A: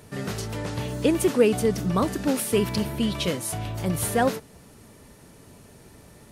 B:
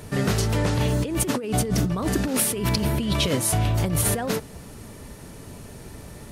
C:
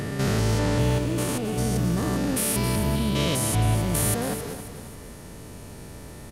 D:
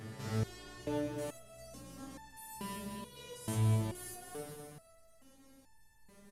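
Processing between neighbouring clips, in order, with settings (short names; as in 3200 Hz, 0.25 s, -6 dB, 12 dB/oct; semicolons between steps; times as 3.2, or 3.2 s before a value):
low shelf 76 Hz +8 dB; negative-ratio compressor -27 dBFS, ratio -1; gain +4 dB
stepped spectrum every 0.2 s; feedback echo 0.269 s, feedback 43%, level -11 dB; gain +1 dB
feedback echo 0.196 s, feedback 55%, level -10 dB; stepped resonator 2.3 Hz 110–880 Hz; gain -6 dB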